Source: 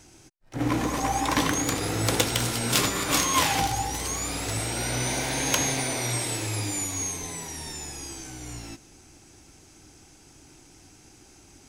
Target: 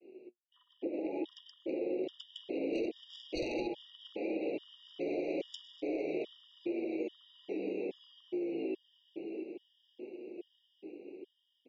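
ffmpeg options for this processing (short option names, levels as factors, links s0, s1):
-af "afreqshift=-13,agate=range=0.0224:threshold=0.00316:ratio=3:detection=peak,highpass=f=240:t=q:w=0.5412,highpass=f=240:t=q:w=1.307,lowpass=f=2400:t=q:w=0.5176,lowpass=f=2400:t=q:w=0.7071,lowpass=f=2400:t=q:w=1.932,afreqshift=55,aecho=1:1:670:0.2,dynaudnorm=f=450:g=9:m=3.16,flanger=delay=8.1:depth=3.2:regen=54:speed=0.3:shape=sinusoidal,aeval=exprs='0.447*sin(PI/2*2.24*val(0)/0.447)':c=same,asuperstop=centerf=1300:order=8:qfactor=0.55,acompressor=threshold=0.0224:ratio=6,afftfilt=real='re*gt(sin(2*PI*1.2*pts/sr)*(1-2*mod(floor(b*sr/1024/950),2)),0)':imag='im*gt(sin(2*PI*1.2*pts/sr)*(1-2*mod(floor(b*sr/1024/950),2)),0)':win_size=1024:overlap=0.75"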